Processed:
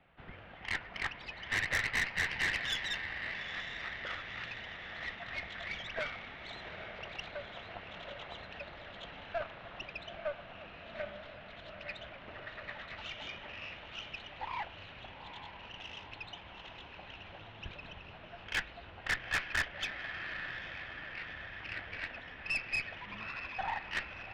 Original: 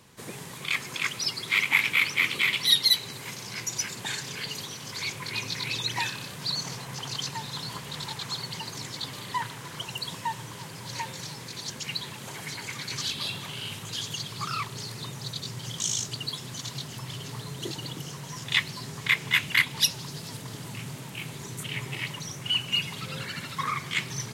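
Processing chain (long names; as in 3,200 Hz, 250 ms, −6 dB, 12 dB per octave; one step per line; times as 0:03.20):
feedback delay with all-pass diffusion 847 ms, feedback 63%, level −9.5 dB
single-sideband voice off tune −320 Hz 300–3,200 Hz
tube saturation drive 23 dB, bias 0.65
level −3 dB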